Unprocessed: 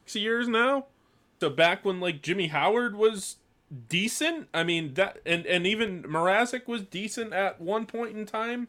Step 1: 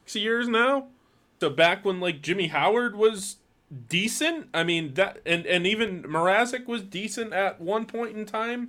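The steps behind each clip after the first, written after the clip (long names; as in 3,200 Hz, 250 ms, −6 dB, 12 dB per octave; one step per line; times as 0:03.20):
mains-hum notches 50/100/150/200/250 Hz
level +2 dB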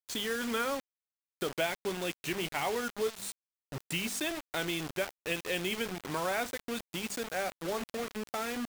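downward compressor 2 to 1, threshold −34 dBFS, peak gain reduction 11 dB
bit reduction 6 bits
level −2.5 dB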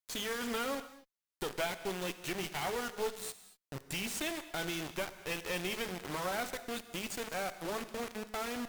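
asymmetric clip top −41.5 dBFS
reverb whose tail is shaped and stops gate 260 ms flat, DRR 11.5 dB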